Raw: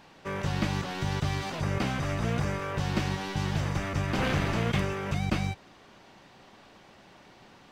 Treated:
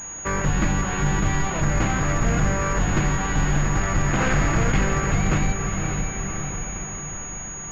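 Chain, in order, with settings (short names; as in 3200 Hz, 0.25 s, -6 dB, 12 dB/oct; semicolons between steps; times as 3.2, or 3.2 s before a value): octaver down 2 oct, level +3 dB; diffused feedback echo 0.57 s, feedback 49%, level -7 dB; reverb RT60 0.55 s, pre-delay 6 ms, DRR 10.5 dB; hard clip -17 dBFS, distortion -21 dB; bell 1600 Hz +5.5 dB 1.3 oct; in parallel at +3 dB: compressor, threshold -31 dBFS, peak gain reduction 11.5 dB; on the sum: pulse-width modulation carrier 6700 Hz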